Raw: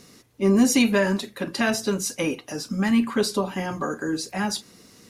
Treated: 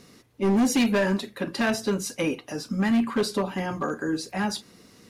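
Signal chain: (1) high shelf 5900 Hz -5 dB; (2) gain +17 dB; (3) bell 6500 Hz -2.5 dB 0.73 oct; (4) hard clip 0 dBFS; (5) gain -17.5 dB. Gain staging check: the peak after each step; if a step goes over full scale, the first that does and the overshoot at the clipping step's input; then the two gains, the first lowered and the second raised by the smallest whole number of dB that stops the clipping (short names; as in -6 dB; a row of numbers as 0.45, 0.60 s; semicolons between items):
-9.5, +7.5, +7.5, 0.0, -17.5 dBFS; step 2, 7.5 dB; step 2 +9 dB, step 5 -9.5 dB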